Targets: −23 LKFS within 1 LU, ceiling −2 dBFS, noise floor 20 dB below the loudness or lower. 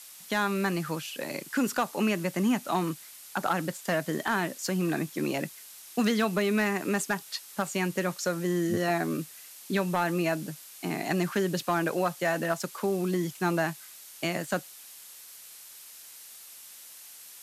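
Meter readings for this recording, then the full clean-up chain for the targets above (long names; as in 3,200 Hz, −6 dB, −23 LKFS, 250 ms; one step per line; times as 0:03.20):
share of clipped samples 0.2%; peaks flattened at −18.0 dBFS; background noise floor −48 dBFS; target noise floor −50 dBFS; integrated loudness −29.5 LKFS; sample peak −18.0 dBFS; target loudness −23.0 LKFS
→ clipped peaks rebuilt −18 dBFS
noise reduction from a noise print 6 dB
level +6.5 dB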